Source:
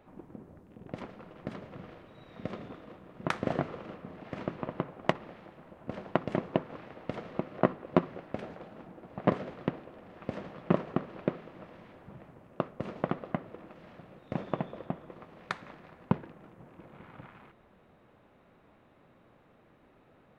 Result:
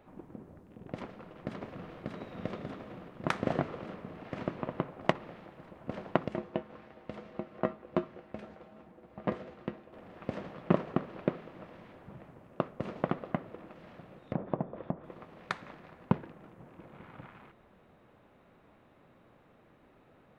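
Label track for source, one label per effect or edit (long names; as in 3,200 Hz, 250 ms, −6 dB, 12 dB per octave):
1.020000	1.900000	delay throw 590 ms, feedback 75%, level −1.5 dB
6.280000	9.930000	tuned comb filter 71 Hz, decay 0.19 s, harmonics odd, mix 70%
14.190000	15.040000	treble cut that deepens with the level closes to 1,000 Hz, closed at −32.5 dBFS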